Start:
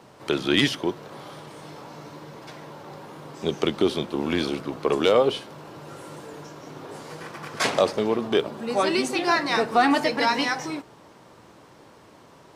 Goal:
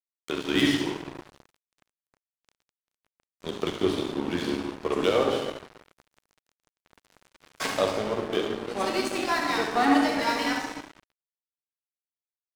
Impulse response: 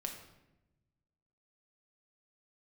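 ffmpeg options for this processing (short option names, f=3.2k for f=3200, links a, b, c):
-filter_complex "[0:a]aecho=1:1:71|142|213|284:0.447|0.143|0.0457|0.0146[a];[1:a]atrim=start_sample=2205,asetrate=22491,aresample=44100[b];[a][b]afir=irnorm=-1:irlink=0,aeval=exprs='sgn(val(0))*max(abs(val(0))-0.0422,0)':c=same,volume=-5.5dB"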